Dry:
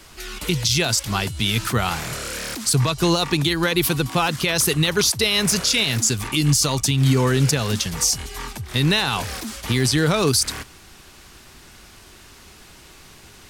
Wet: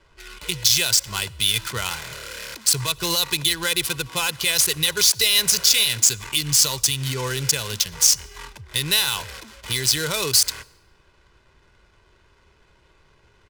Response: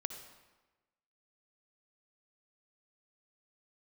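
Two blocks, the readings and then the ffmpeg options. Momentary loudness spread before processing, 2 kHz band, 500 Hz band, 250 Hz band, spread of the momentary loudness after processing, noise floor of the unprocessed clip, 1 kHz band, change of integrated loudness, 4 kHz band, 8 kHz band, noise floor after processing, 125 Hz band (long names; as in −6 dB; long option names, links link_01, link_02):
9 LU, −1.5 dB, −8.0 dB, −13.0 dB, 12 LU, −47 dBFS, −6.5 dB, +0.5 dB, +2.5 dB, +3.5 dB, −59 dBFS, −10.5 dB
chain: -filter_complex "[0:a]highshelf=frequency=7900:gain=-4.5,aecho=1:1:2:0.52,adynamicsmooth=sensitivity=4:basefreq=980,crystalizer=i=8.5:c=0,asplit=2[link_01][link_02];[1:a]atrim=start_sample=2205,asetrate=41895,aresample=44100[link_03];[link_02][link_03]afir=irnorm=-1:irlink=0,volume=-16dB[link_04];[link_01][link_04]amix=inputs=2:normalize=0,volume=-12.5dB"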